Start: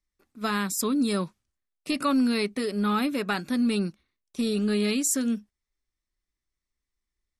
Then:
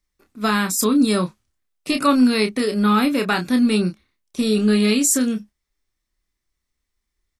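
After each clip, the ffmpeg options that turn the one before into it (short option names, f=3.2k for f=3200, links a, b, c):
-filter_complex "[0:a]asplit=2[a][b];[b]adelay=28,volume=-7dB[c];[a][c]amix=inputs=2:normalize=0,volume=7dB"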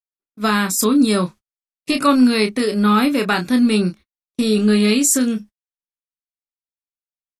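-af "agate=range=-43dB:threshold=-37dB:ratio=16:detection=peak,volume=2dB"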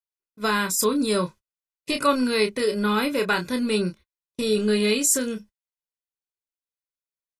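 -af "aecho=1:1:2:0.52,volume=-5dB"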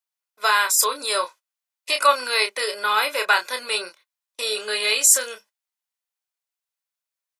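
-af "highpass=f=620:w=0.5412,highpass=f=620:w=1.3066,volume=6dB"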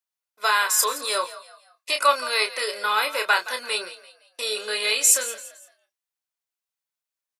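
-filter_complex "[0:a]asplit=4[a][b][c][d];[b]adelay=170,afreqshift=50,volume=-15.5dB[e];[c]adelay=340,afreqshift=100,volume=-24.1dB[f];[d]adelay=510,afreqshift=150,volume=-32.8dB[g];[a][e][f][g]amix=inputs=4:normalize=0,volume=-2dB"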